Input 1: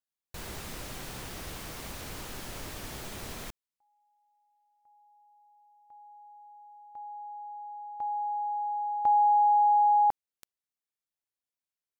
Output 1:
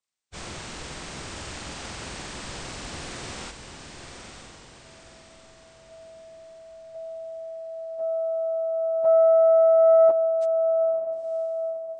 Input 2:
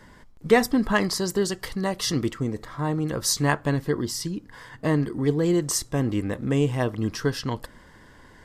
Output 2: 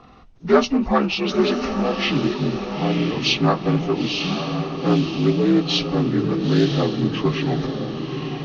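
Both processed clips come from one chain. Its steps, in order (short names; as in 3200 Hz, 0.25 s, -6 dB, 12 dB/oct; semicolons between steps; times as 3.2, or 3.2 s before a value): inharmonic rescaling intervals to 80%; diffused feedback echo 0.953 s, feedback 46%, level -6 dB; Doppler distortion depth 0.15 ms; gain +5 dB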